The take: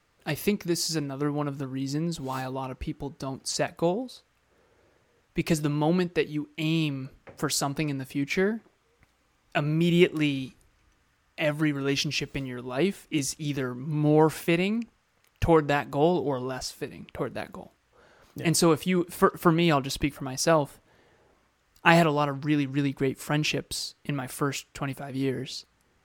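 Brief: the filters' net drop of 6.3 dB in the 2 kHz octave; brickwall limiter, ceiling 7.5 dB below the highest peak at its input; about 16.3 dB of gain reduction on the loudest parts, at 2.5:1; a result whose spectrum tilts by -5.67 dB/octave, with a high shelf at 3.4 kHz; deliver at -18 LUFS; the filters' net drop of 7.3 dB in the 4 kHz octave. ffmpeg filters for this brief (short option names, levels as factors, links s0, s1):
-af "equalizer=f=2000:t=o:g=-5.5,highshelf=f=3400:g=-6,equalizer=f=4000:t=o:g=-3.5,acompressor=threshold=0.00891:ratio=2.5,volume=15,alimiter=limit=0.473:level=0:latency=1"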